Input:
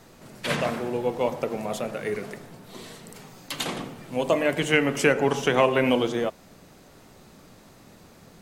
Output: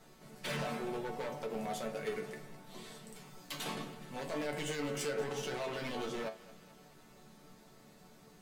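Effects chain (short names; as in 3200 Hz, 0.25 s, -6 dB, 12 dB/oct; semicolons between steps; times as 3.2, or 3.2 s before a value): limiter -18 dBFS, peak gain reduction 11.5 dB; wavefolder -23 dBFS; resonator bank D3 major, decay 0.2 s; thinning echo 0.211 s, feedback 61%, high-pass 420 Hz, level -18 dB; ending taper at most 200 dB/s; gain +4.5 dB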